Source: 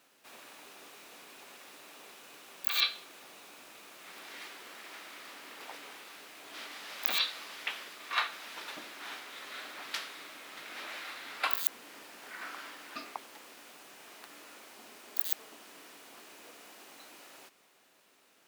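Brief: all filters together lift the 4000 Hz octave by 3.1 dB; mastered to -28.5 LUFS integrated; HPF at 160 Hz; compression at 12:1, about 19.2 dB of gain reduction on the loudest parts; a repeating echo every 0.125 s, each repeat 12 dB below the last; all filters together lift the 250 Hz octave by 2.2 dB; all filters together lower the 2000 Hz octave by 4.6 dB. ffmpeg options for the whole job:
-af "highpass=160,equalizer=f=250:t=o:g=3.5,equalizer=f=2k:t=o:g=-8,equalizer=f=4k:t=o:g=5.5,acompressor=threshold=-44dB:ratio=12,aecho=1:1:125|250|375:0.251|0.0628|0.0157,volume=19.5dB"

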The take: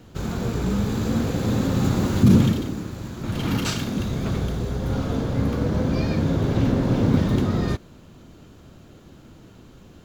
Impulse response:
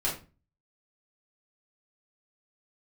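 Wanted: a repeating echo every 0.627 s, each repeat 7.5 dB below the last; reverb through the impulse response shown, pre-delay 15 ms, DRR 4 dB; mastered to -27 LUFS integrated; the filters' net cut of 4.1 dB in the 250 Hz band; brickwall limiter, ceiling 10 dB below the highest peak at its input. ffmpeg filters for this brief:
-filter_complex "[0:a]equalizer=f=250:t=o:g=-5.5,alimiter=limit=-17dB:level=0:latency=1,aecho=1:1:627|1254|1881|2508|3135:0.422|0.177|0.0744|0.0312|0.0131,asplit=2[a][b];[1:a]atrim=start_sample=2205,adelay=15[c];[b][c]afir=irnorm=-1:irlink=0,volume=-11.5dB[d];[a][d]amix=inputs=2:normalize=0,volume=-1.5dB"

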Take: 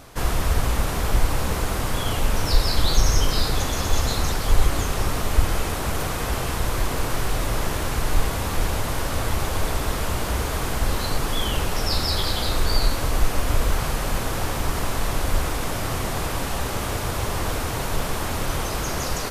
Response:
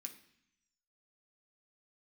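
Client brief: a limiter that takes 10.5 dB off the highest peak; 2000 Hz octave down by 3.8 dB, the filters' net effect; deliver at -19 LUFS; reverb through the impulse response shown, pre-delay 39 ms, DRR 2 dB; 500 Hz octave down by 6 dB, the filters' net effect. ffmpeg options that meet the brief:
-filter_complex "[0:a]equalizer=f=500:t=o:g=-7.5,equalizer=f=2k:t=o:g=-4.5,alimiter=limit=-13.5dB:level=0:latency=1,asplit=2[a][b];[1:a]atrim=start_sample=2205,adelay=39[c];[b][c]afir=irnorm=-1:irlink=0,volume=4dB[d];[a][d]amix=inputs=2:normalize=0,volume=6dB"

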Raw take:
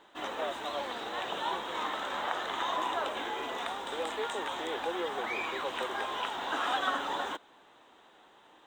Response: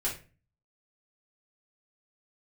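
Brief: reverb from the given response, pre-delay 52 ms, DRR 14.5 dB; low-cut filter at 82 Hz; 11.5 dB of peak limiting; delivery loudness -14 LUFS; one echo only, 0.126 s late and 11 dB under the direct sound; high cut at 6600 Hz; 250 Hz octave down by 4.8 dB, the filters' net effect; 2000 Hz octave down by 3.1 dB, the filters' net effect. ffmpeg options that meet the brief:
-filter_complex "[0:a]highpass=82,lowpass=6.6k,equalizer=f=250:t=o:g=-7,equalizer=f=2k:t=o:g=-4,alimiter=level_in=6dB:limit=-24dB:level=0:latency=1,volume=-6dB,aecho=1:1:126:0.282,asplit=2[a][b];[1:a]atrim=start_sample=2205,adelay=52[c];[b][c]afir=irnorm=-1:irlink=0,volume=-19.5dB[d];[a][d]amix=inputs=2:normalize=0,volume=24.5dB"

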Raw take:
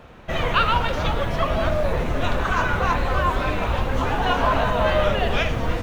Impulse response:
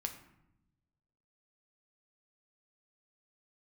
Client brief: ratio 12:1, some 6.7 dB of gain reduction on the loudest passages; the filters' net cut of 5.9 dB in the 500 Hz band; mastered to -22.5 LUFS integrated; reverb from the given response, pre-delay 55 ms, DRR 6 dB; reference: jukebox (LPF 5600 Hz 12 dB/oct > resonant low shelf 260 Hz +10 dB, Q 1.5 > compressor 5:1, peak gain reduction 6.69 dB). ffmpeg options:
-filter_complex "[0:a]equalizer=f=500:t=o:g=-5.5,acompressor=threshold=-23dB:ratio=12,asplit=2[a][b];[1:a]atrim=start_sample=2205,adelay=55[c];[b][c]afir=irnorm=-1:irlink=0,volume=-5.5dB[d];[a][d]amix=inputs=2:normalize=0,lowpass=5.6k,lowshelf=f=260:t=q:w=1.5:g=10,acompressor=threshold=-16dB:ratio=5,volume=2.5dB"

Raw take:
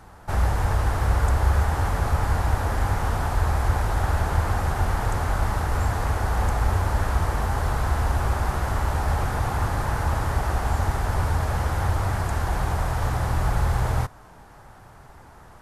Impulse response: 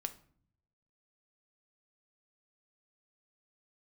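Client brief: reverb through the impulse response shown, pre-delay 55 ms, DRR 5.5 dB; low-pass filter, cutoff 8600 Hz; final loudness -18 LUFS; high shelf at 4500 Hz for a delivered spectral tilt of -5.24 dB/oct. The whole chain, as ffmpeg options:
-filter_complex "[0:a]lowpass=8.6k,highshelf=f=4.5k:g=8,asplit=2[a][b];[1:a]atrim=start_sample=2205,adelay=55[c];[b][c]afir=irnorm=-1:irlink=0,volume=-4.5dB[d];[a][d]amix=inputs=2:normalize=0,volume=5.5dB"

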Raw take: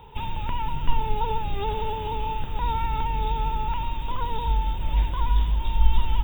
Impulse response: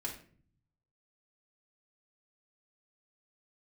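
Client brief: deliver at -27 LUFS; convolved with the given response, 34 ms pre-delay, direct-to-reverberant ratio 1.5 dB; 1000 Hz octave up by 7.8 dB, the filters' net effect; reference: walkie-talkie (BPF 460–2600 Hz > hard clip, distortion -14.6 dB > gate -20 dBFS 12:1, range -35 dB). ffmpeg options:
-filter_complex "[0:a]equalizer=f=1k:t=o:g=9,asplit=2[a][b];[1:a]atrim=start_sample=2205,adelay=34[c];[b][c]afir=irnorm=-1:irlink=0,volume=-2dB[d];[a][d]amix=inputs=2:normalize=0,highpass=460,lowpass=2.6k,asoftclip=type=hard:threshold=-17dB,agate=range=-35dB:threshold=-20dB:ratio=12,volume=-3dB"

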